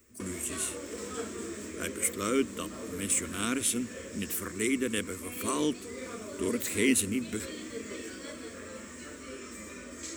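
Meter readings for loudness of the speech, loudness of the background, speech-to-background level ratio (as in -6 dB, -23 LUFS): -31.5 LUFS, -41.5 LUFS, 10.0 dB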